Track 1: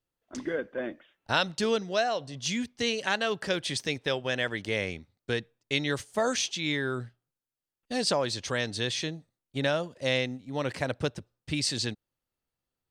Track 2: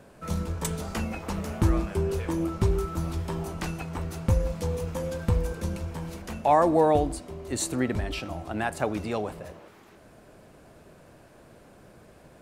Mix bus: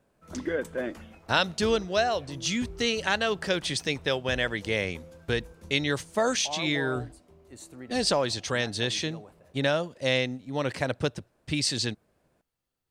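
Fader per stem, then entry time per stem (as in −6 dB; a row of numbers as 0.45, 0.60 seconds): +2.0, −17.0 decibels; 0.00, 0.00 seconds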